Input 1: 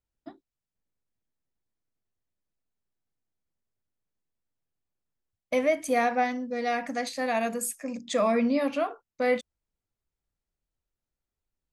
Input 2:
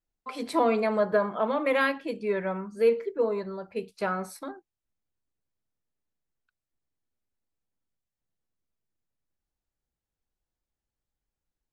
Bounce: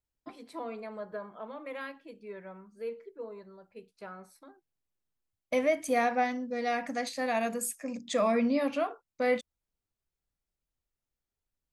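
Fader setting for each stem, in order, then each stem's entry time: −2.5, −15.5 decibels; 0.00, 0.00 seconds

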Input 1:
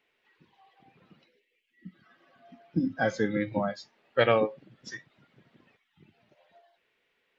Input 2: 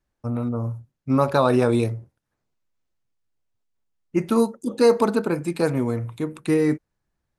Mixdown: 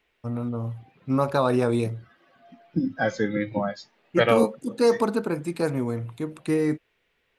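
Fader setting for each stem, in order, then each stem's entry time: +2.5, −3.5 decibels; 0.00, 0.00 seconds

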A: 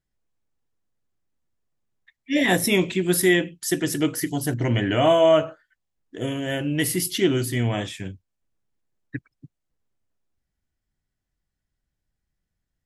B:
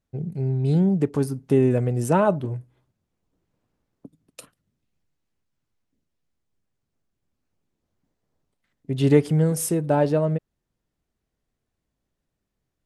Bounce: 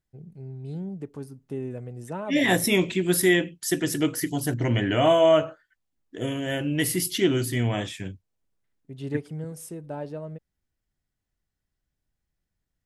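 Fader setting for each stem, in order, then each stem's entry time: −1.5, −14.5 decibels; 0.00, 0.00 seconds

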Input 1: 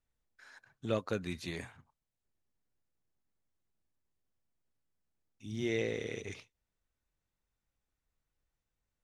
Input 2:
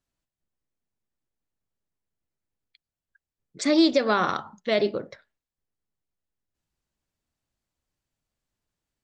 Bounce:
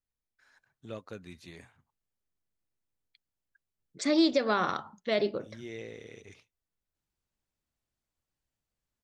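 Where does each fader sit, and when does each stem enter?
−8.5, −5.0 decibels; 0.00, 0.40 seconds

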